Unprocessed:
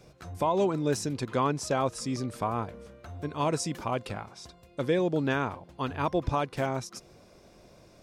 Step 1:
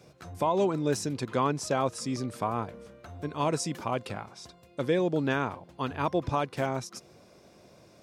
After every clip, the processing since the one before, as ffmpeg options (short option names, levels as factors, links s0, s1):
-af "highpass=90"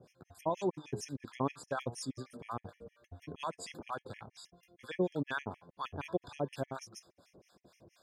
-filter_complex "[0:a]flanger=delay=7.8:depth=4.2:regen=88:speed=0.46:shape=sinusoidal,acrossover=split=890[s0][s1];[s0]aeval=exprs='val(0)*(1-1/2+1/2*cos(2*PI*4.2*n/s))':c=same[s2];[s1]aeval=exprs='val(0)*(1-1/2-1/2*cos(2*PI*4.2*n/s))':c=same[s3];[s2][s3]amix=inputs=2:normalize=0,afftfilt=real='re*gt(sin(2*PI*6.4*pts/sr)*(1-2*mod(floor(b*sr/1024/1700),2)),0)':imag='im*gt(sin(2*PI*6.4*pts/sr)*(1-2*mod(floor(b*sr/1024/1700),2)),0)':win_size=1024:overlap=0.75,volume=1.58"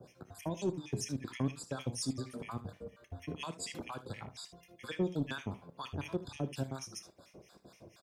-filter_complex "[0:a]acrossover=split=340|3000[s0][s1][s2];[s1]acompressor=threshold=0.00355:ratio=6[s3];[s0][s3][s2]amix=inputs=3:normalize=0,asoftclip=type=tanh:threshold=0.0355,aecho=1:1:30|60|76:0.178|0.133|0.158,volume=1.88"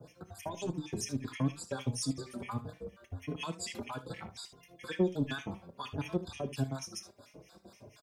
-filter_complex "[0:a]asplit=2[s0][s1];[s1]adelay=4.3,afreqshift=1.5[s2];[s0][s2]amix=inputs=2:normalize=1,volume=1.78"